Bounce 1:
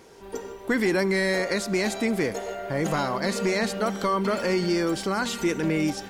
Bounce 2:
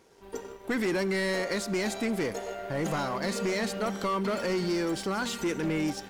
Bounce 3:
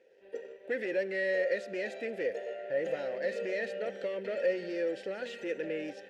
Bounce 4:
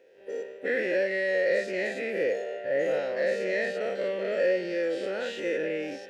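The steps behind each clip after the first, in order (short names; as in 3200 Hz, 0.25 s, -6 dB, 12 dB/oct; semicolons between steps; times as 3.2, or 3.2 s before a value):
soft clip -23.5 dBFS, distortion -12 dB; power-law curve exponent 1.4
vowel filter e; gain +6.5 dB
spectral dilation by 0.12 s; gain +1 dB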